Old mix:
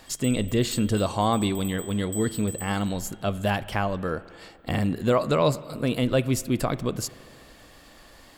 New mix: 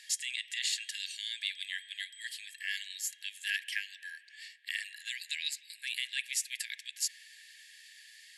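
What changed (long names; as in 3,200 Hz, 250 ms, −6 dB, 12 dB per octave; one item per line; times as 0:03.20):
background: add phaser with its sweep stopped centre 2,500 Hz, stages 6
master: add linear-phase brick-wall band-pass 1,600–12,000 Hz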